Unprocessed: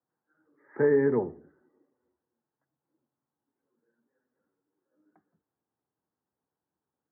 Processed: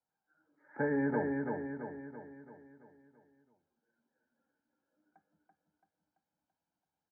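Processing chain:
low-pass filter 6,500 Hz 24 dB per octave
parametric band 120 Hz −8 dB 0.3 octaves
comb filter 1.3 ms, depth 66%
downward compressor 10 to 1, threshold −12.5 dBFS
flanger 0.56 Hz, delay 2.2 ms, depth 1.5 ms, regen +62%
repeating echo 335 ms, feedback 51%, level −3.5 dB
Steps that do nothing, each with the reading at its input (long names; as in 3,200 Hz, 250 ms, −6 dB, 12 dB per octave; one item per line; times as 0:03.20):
low-pass filter 6,500 Hz: nothing at its input above 1,800 Hz
downward compressor, threshold −12.5 dBFS: peak of its input −16.5 dBFS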